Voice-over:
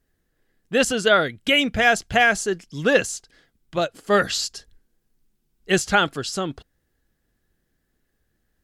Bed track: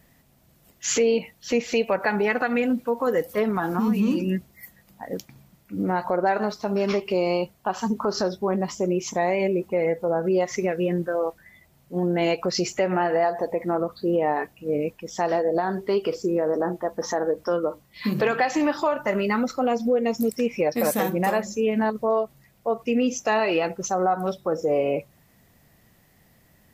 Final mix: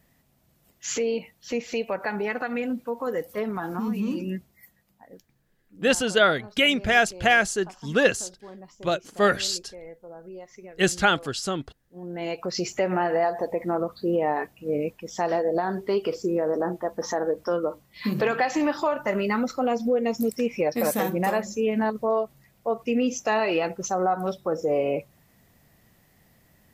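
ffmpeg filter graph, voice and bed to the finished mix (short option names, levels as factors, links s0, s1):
-filter_complex "[0:a]adelay=5100,volume=0.794[s0];[1:a]volume=4.22,afade=t=out:st=4.26:d=0.96:silence=0.199526,afade=t=in:st=11.93:d=0.88:silence=0.125893[s1];[s0][s1]amix=inputs=2:normalize=0"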